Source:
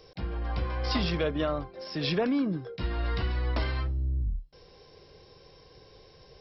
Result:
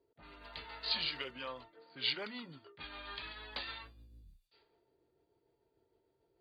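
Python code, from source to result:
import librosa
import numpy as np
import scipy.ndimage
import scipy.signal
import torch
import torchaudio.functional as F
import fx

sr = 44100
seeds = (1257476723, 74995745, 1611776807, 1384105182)

y = fx.pitch_heads(x, sr, semitones=-2.5)
y = fx.low_shelf(y, sr, hz=110.0, db=9.0)
y = fx.env_lowpass(y, sr, base_hz=430.0, full_db=-22.5)
y = np.diff(y, prepend=0.0)
y = y * 10.0 ** (7.0 / 20.0)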